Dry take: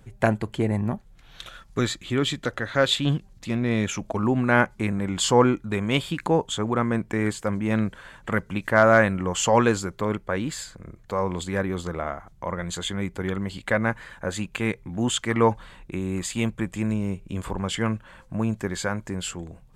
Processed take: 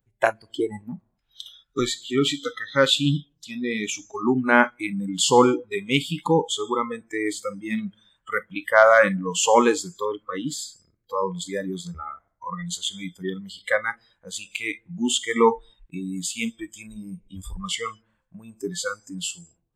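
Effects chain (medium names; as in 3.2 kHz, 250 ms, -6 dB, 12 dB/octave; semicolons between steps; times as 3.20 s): gated-style reverb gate 280 ms falling, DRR 12 dB; spectral noise reduction 28 dB; trim +3 dB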